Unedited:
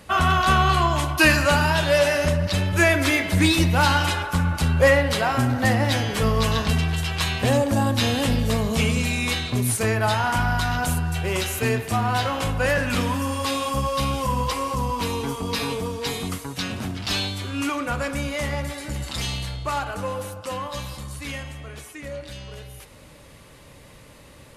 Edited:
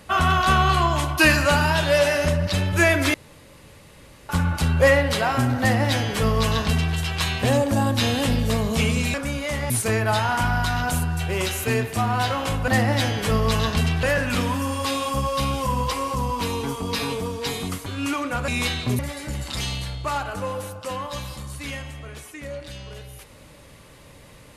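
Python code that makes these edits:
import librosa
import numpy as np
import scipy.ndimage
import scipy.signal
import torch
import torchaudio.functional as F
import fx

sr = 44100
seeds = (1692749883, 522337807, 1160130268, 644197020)

y = fx.edit(x, sr, fx.room_tone_fill(start_s=3.14, length_s=1.15),
    fx.duplicate(start_s=5.6, length_s=1.35, to_s=12.63),
    fx.swap(start_s=9.14, length_s=0.51, other_s=18.04, other_length_s=0.56),
    fx.cut(start_s=16.46, length_s=0.96), tone=tone)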